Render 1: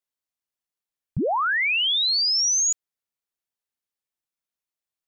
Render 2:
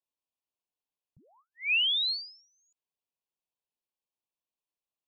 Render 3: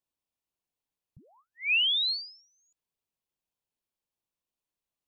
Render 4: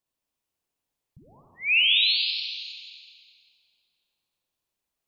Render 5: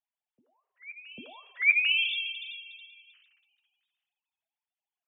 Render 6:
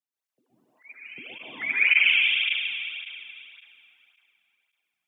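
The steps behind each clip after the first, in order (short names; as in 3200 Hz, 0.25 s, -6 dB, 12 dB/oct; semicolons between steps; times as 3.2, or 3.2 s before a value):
elliptic band-stop 1100–2500 Hz, stop band 80 dB; tone controls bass -5 dB, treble -12 dB; ending taper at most 110 dB/s
low shelf 260 Hz +8 dB; gain +1 dB
reverb RT60 2.5 s, pre-delay 43 ms, DRR -0.5 dB; gain +3 dB
sine-wave speech; flange 0.4 Hz, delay 4.6 ms, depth 3.4 ms, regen +55%; reverse echo 0.796 s -22.5 dB
spectral limiter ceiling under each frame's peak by 12 dB; plate-style reverb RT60 3.3 s, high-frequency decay 0.7×, pre-delay 0.11 s, DRR -9.5 dB; tape flanging out of phase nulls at 1.8 Hz, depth 2.3 ms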